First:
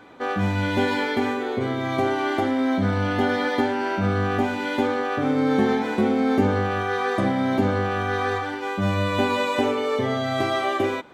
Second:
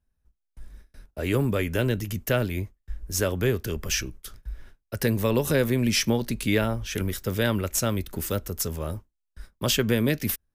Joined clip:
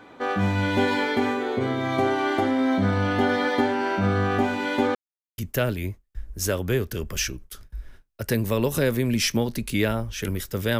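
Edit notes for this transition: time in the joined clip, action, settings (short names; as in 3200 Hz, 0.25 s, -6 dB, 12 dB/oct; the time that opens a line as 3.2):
first
4.95–5.38 mute
5.38 switch to second from 2.11 s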